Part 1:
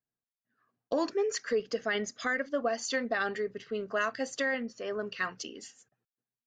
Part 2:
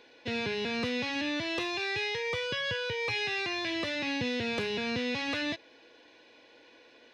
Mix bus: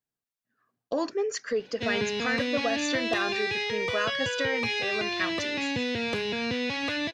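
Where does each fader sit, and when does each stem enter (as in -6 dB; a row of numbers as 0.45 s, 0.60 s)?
+1.0 dB, +2.5 dB; 0.00 s, 1.55 s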